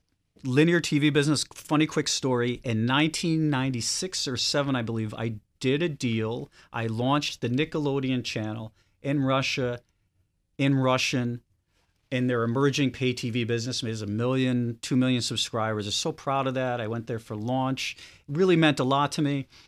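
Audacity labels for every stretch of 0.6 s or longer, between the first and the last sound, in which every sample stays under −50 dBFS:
9.790000	10.590000	silence
11.390000	12.120000	silence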